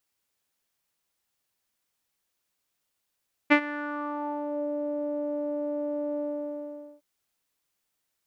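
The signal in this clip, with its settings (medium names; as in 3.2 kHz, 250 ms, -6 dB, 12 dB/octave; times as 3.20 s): synth note saw D4 12 dB/octave, low-pass 560 Hz, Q 4.1, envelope 2 oct, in 1.17 s, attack 20 ms, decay 0.08 s, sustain -18 dB, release 0.81 s, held 2.70 s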